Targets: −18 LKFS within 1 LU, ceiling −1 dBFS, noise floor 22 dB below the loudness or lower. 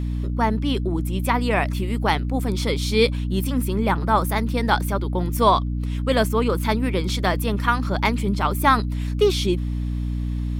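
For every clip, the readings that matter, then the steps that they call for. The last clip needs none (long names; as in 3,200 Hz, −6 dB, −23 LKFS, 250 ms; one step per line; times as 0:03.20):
mains hum 60 Hz; hum harmonics up to 300 Hz; level of the hum −22 dBFS; integrated loudness −22.0 LKFS; sample peak −4.0 dBFS; target loudness −18.0 LKFS
→ mains-hum notches 60/120/180/240/300 Hz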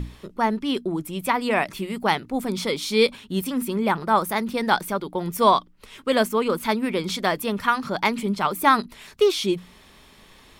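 mains hum none found; integrated loudness −23.5 LKFS; sample peak −4.5 dBFS; target loudness −18.0 LKFS
→ level +5.5 dB
brickwall limiter −1 dBFS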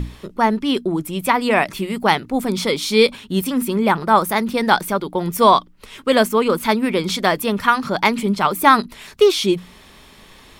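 integrated loudness −18.0 LKFS; sample peak −1.0 dBFS; background noise floor −46 dBFS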